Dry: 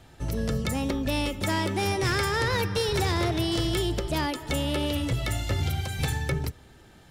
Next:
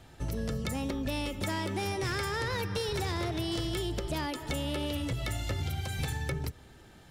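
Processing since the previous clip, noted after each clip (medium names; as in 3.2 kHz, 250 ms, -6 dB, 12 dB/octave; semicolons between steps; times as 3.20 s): compression, threshold -28 dBFS, peak gain reduction 6 dB; trim -1.5 dB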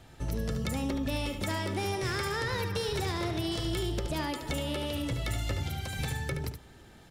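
delay 73 ms -8 dB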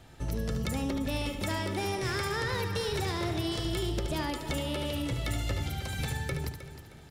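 feedback delay 312 ms, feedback 36%, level -12.5 dB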